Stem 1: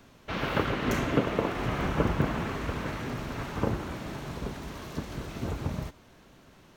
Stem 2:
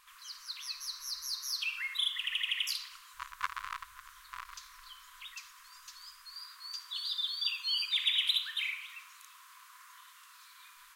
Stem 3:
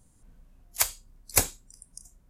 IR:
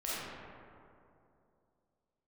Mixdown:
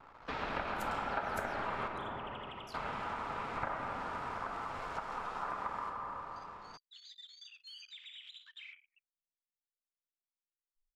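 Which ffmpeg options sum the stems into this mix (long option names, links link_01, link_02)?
-filter_complex "[0:a]lowpass=frequency=11000:width=0.5412,lowpass=frequency=11000:width=1.3066,aeval=exprs='val(0)*sin(2*PI*1100*n/s)':channel_layout=same,volume=2dB,asplit=3[link_01][link_02][link_03];[link_01]atrim=end=1.88,asetpts=PTS-STARTPTS,afade=type=out:start_time=1.876:duration=0.004:curve=hsin[link_04];[link_02]atrim=start=1.88:end=2.74,asetpts=PTS-STARTPTS,volume=0[link_05];[link_03]atrim=start=2.74,asetpts=PTS-STARTPTS,afade=type=in:duration=0.004:curve=hsin[link_06];[link_04][link_05][link_06]concat=n=3:v=0:a=1,asplit=2[link_07][link_08];[link_08]volume=-5.5dB[link_09];[1:a]afwtdn=0.00501,asubboost=boost=10:cutoff=240,alimiter=level_in=2.5dB:limit=-24dB:level=0:latency=1:release=124,volume=-2.5dB,volume=-9.5dB[link_10];[2:a]volume=-11dB[link_11];[3:a]atrim=start_sample=2205[link_12];[link_09][link_12]afir=irnorm=-1:irlink=0[link_13];[link_07][link_10][link_11][link_13]amix=inputs=4:normalize=0,anlmdn=0.001,highshelf=frequency=2800:gain=-10.5,acompressor=threshold=-39dB:ratio=2.5"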